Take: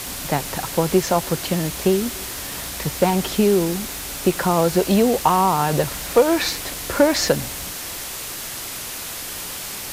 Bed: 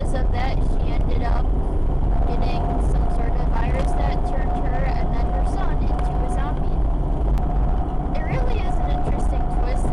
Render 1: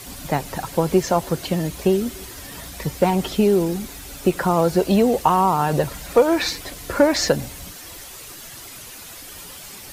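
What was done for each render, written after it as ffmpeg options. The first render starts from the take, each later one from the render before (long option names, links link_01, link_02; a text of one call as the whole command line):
ffmpeg -i in.wav -af "afftdn=noise_reduction=10:noise_floor=-31" out.wav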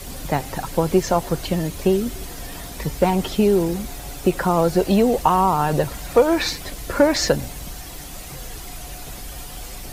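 ffmpeg -i in.wav -i bed.wav -filter_complex "[1:a]volume=-16dB[link_01];[0:a][link_01]amix=inputs=2:normalize=0" out.wav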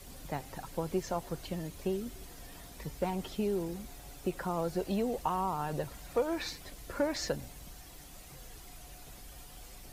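ffmpeg -i in.wav -af "volume=-15.5dB" out.wav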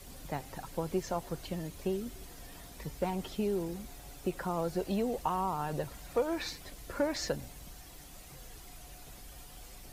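ffmpeg -i in.wav -af anull out.wav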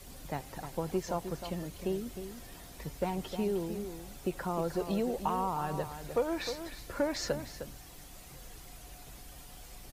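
ffmpeg -i in.wav -filter_complex "[0:a]asplit=2[link_01][link_02];[link_02]adelay=309,volume=-9dB,highshelf=frequency=4000:gain=-6.95[link_03];[link_01][link_03]amix=inputs=2:normalize=0" out.wav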